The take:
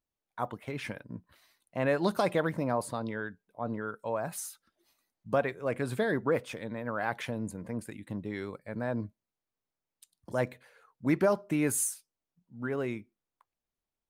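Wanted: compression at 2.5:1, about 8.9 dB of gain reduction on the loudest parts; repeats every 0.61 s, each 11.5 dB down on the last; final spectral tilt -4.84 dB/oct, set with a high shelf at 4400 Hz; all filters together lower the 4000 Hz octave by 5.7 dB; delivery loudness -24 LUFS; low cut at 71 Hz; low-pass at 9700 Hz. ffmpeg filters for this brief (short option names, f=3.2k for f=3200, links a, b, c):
-af "highpass=71,lowpass=9.7k,equalizer=f=4k:t=o:g=-5,highshelf=f=4.4k:g=-4,acompressor=threshold=-36dB:ratio=2.5,aecho=1:1:610|1220|1830:0.266|0.0718|0.0194,volume=16dB"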